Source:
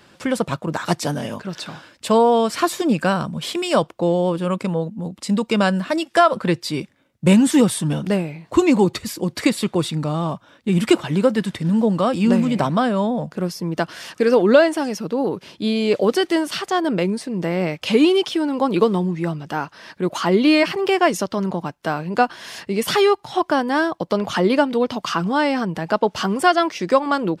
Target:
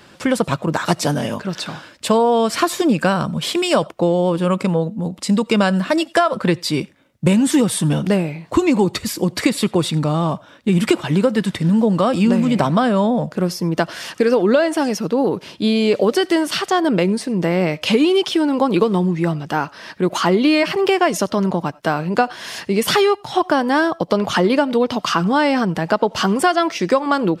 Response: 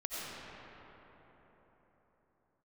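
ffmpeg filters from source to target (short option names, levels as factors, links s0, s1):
-filter_complex "[0:a]acompressor=threshold=0.158:ratio=6,asplit=2[s0][s1];[1:a]atrim=start_sample=2205,atrim=end_sample=4410[s2];[s1][s2]afir=irnorm=-1:irlink=0,volume=0.158[s3];[s0][s3]amix=inputs=2:normalize=0,volume=1.58"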